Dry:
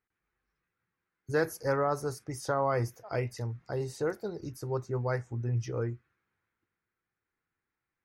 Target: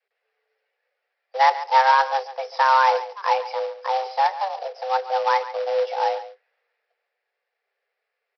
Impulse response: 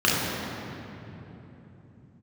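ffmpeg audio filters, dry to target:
-af "adynamicequalizer=threshold=0.00708:dfrequency=570:dqfactor=2:tfrequency=570:tqfactor=2:attack=5:release=100:ratio=0.375:range=3.5:mode=boostabove:tftype=bell,aresample=11025,acrusher=bits=3:mode=log:mix=0:aa=0.000001,aresample=44100,asetrate=42336,aresample=44100,afreqshift=390,aecho=1:1:140:0.188,volume=7.5dB"

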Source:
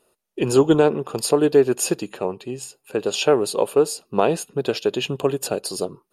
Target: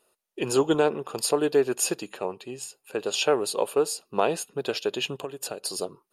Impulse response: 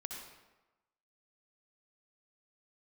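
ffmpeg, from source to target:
-filter_complex "[0:a]asplit=3[a][b][c];[a]afade=t=out:st=5.16:d=0.02[d];[b]acompressor=threshold=-25dB:ratio=6,afade=t=in:st=5.16:d=0.02,afade=t=out:st=5.61:d=0.02[e];[c]afade=t=in:st=5.61:d=0.02[f];[d][e][f]amix=inputs=3:normalize=0,lowshelf=f=390:g=-9.5,volume=-2dB"

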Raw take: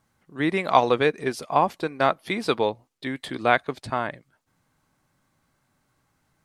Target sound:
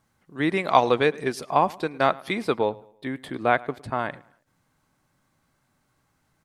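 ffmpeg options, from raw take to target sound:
-filter_complex "[0:a]asettb=1/sr,asplit=3[a][b][c];[a]atrim=end=2.424[d];[b]atrim=start=2.42:end=3.99,asetpts=PTS-STARTPTS,afade=t=in:d=0.004:c=qsin,afade=t=out:st=1.566:d=0.004:c=qsin,equalizer=f=5.1k:t=o:w=2.2:g=-8.5[e];[c]atrim=start=3.986[f];[d][e]acrossfade=d=0.004:c1=hsin:c2=qsin[g];[g][f]acrossfade=d=0.004:c1=qsin:c2=hsin,asplit=2[h][i];[i]adelay=108,lowpass=f=4.1k:p=1,volume=-22dB,asplit=2[j][k];[k]adelay=108,lowpass=f=4.1k:p=1,volume=0.38,asplit=2[l][m];[m]adelay=108,lowpass=f=4.1k:p=1,volume=0.38[n];[h][j][l][n]amix=inputs=4:normalize=0"

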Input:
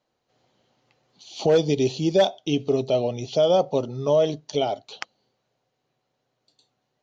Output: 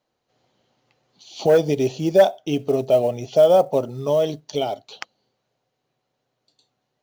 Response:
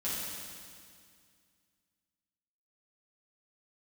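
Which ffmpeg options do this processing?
-filter_complex "[0:a]asettb=1/sr,asplit=3[a][b][c];[a]atrim=end=1.474[d];[b]atrim=start=1.47:end=3.9,asetpts=PTS-STARTPTS,afade=t=in:d=0.004:c=qsin,afade=t=out:st=2.426:d=0.004:c=qsin,equalizer=f=630:t=o:w=0.67:g=6,equalizer=f=1.6k:t=o:w=0.67:g=6,equalizer=f=4k:t=o:w=0.67:g=-7[e];[c]atrim=start=3.896[f];[d][e]acrossfade=d=0.004:c1=hsin:c2=qsin[g];[g][f]acrossfade=d=0.004:c1=qsin:c2=hsin,acrusher=bits=8:mode=log:mix=0:aa=0.000001"

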